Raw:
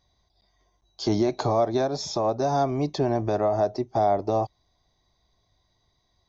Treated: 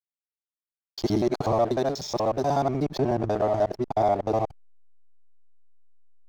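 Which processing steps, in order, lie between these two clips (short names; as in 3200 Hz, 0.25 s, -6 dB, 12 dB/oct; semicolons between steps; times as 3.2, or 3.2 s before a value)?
local time reversal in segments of 61 ms; backlash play -35.5 dBFS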